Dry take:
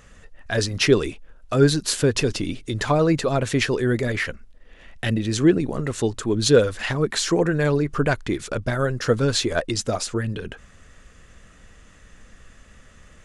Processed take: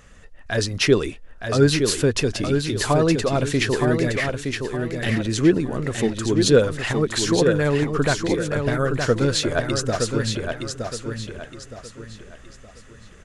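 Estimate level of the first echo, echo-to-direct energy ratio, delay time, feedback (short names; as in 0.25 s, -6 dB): -5.5 dB, -5.0 dB, 0.917 s, 34%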